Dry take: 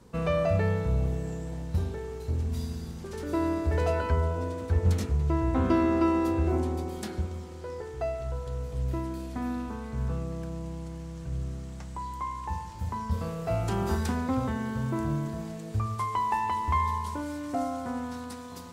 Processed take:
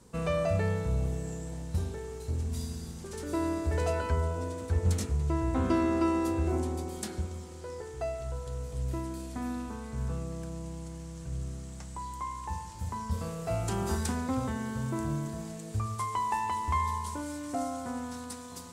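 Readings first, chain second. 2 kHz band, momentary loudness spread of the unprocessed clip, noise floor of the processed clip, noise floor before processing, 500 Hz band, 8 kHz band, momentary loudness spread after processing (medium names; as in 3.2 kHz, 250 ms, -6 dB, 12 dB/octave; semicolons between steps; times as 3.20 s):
-2.5 dB, 12 LU, -43 dBFS, -40 dBFS, -3.0 dB, +5.5 dB, 11 LU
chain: peaking EQ 8.4 kHz +10 dB 1.2 oct; trim -3 dB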